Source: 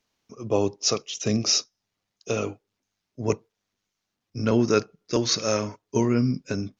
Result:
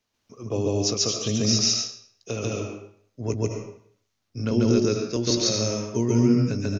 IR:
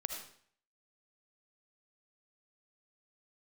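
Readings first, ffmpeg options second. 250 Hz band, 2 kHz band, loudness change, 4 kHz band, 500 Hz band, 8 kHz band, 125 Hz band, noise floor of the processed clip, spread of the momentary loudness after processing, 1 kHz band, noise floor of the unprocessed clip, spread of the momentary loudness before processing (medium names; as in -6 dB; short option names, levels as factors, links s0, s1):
+2.5 dB, -2.5 dB, +1.5 dB, +2.0 dB, 0.0 dB, no reading, +4.5 dB, -76 dBFS, 15 LU, -5.0 dB, -82 dBFS, 9 LU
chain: -filter_complex "[0:a]equalizer=f=96:w=6:g=6.5,asplit=2[s0][s1];[s1]adelay=17,volume=0.2[s2];[s0][s2]amix=inputs=2:normalize=0,asplit=2[s3][s4];[1:a]atrim=start_sample=2205,adelay=141[s5];[s4][s5]afir=irnorm=-1:irlink=0,volume=1.41[s6];[s3][s6]amix=inputs=2:normalize=0,acrossover=split=460|3000[s7][s8][s9];[s8]acompressor=threshold=0.02:ratio=6[s10];[s7][s10][s9]amix=inputs=3:normalize=0,volume=0.75"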